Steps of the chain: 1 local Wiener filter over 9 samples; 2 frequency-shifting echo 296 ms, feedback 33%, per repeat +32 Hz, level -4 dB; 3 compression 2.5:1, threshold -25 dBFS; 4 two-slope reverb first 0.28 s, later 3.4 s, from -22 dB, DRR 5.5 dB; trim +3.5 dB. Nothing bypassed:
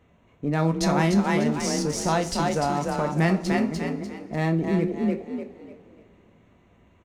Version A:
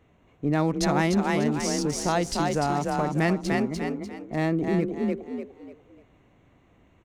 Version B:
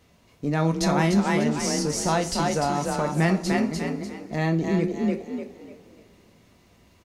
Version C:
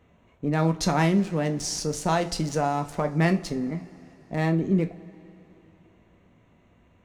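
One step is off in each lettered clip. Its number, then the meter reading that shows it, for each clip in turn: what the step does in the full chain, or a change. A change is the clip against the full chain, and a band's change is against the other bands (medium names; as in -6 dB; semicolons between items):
4, momentary loudness spread change -1 LU; 1, 8 kHz band +2.5 dB; 2, 125 Hz band +1.5 dB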